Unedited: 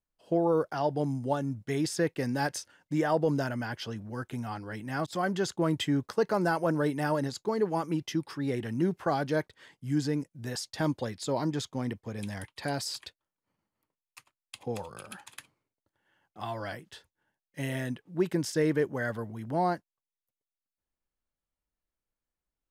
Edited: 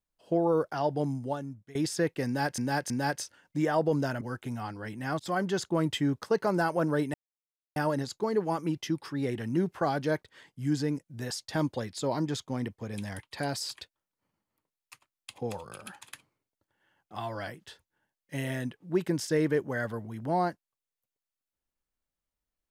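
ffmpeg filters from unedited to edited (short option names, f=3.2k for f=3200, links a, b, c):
-filter_complex "[0:a]asplit=6[a][b][c][d][e][f];[a]atrim=end=1.75,asetpts=PTS-STARTPTS,afade=t=out:st=1.06:d=0.69:silence=0.0841395[g];[b]atrim=start=1.75:end=2.582,asetpts=PTS-STARTPTS,afade=t=in:d=0.004:c=hsin:silence=0.0841395[h];[c]atrim=start=2.258:end=2.582[i];[d]atrim=start=2.258:end=3.572[j];[e]atrim=start=4.078:end=7.01,asetpts=PTS-STARTPTS,afade=t=out:st=2.928:d=0.004:c=hsin,apad=pad_dur=0.62[k];[f]atrim=start=7.01,asetpts=PTS-STARTPTS,afade=t=in:d=0.004:c=hsin[l];[g][h]concat=n=2:v=0:a=1[m];[m][i]acrossfade=d=0.004:c1=hsin:c2=hsin[n];[n][j]acrossfade=d=0.004:c1=hsin:c2=hsin[o];[k][l]concat=n=2:v=0:a=1[p];[o][p]acrossfade=d=0.004:c1=hsin:c2=hsin"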